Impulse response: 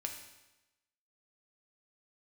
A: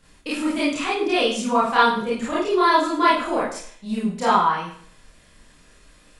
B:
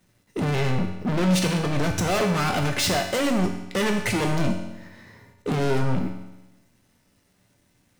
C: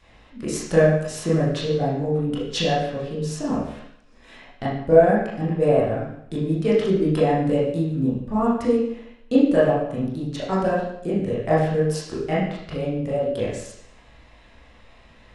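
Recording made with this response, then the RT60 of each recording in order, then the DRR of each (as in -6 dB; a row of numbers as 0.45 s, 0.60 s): B; 0.55 s, 1.0 s, 0.70 s; -9.0 dB, 2.5 dB, -9.0 dB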